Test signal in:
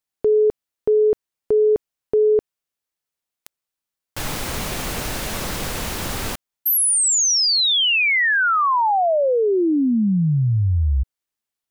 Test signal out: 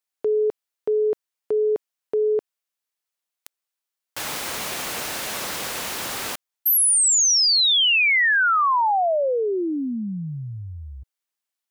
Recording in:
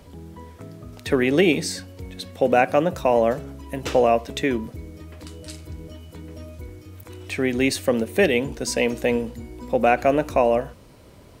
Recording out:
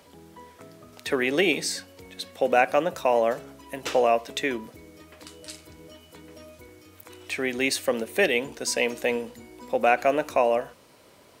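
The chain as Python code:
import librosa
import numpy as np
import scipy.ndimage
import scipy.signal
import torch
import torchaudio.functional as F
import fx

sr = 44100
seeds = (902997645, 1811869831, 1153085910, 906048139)

y = fx.highpass(x, sr, hz=610.0, slope=6)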